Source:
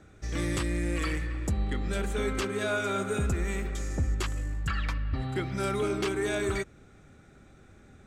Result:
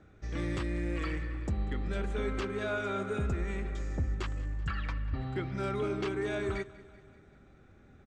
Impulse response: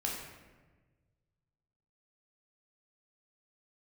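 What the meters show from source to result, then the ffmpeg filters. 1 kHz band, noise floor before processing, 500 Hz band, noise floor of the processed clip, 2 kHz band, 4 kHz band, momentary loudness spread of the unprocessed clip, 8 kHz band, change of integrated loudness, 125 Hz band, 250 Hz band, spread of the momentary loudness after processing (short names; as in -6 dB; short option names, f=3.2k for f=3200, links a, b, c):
-4.0 dB, -55 dBFS, -3.5 dB, -58 dBFS, -5.0 dB, -7.5 dB, 4 LU, -15.0 dB, -4.0 dB, -3.5 dB, -3.5 dB, 4 LU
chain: -af "lowpass=6.4k,highshelf=f=3.9k:g=-8.5,aecho=1:1:192|384|576|768|960:0.1|0.06|0.036|0.0216|0.013,volume=-3.5dB"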